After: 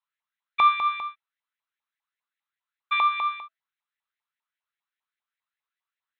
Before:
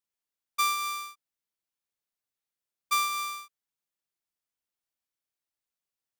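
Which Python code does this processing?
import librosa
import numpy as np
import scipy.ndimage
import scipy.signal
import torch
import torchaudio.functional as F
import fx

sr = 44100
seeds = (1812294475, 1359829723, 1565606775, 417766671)

y = fx.brickwall_lowpass(x, sr, high_hz=4200.0)
y = fx.filter_lfo_highpass(y, sr, shape='saw_up', hz=5.0, low_hz=880.0, high_hz=2100.0, q=4.6)
y = fx.comb_fb(y, sr, f0_hz=660.0, decay_s=0.21, harmonics='all', damping=0.0, mix_pct=50)
y = y * 10.0 ** (5.5 / 20.0)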